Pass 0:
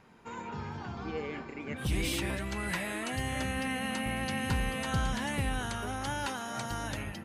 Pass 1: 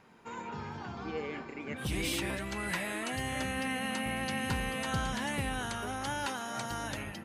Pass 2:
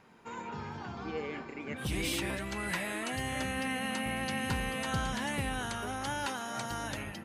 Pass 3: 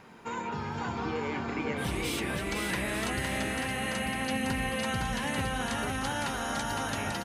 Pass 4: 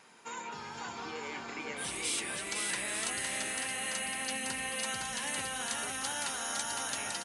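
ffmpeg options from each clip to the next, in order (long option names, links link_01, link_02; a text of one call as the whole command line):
ffmpeg -i in.wav -af "lowshelf=frequency=100:gain=-8.5" out.wav
ffmpeg -i in.wav -af anull out.wav
ffmpeg -i in.wav -filter_complex "[0:a]acompressor=threshold=-38dB:ratio=6,asplit=2[link_01][link_02];[link_02]aecho=0:1:510|892.5|1179|1395|1556:0.631|0.398|0.251|0.158|0.1[link_03];[link_01][link_03]amix=inputs=2:normalize=0,volume=7.5dB" out.wav
ffmpeg -i in.wav -af "aemphasis=mode=production:type=riaa,aresample=22050,aresample=44100,volume=-6dB" out.wav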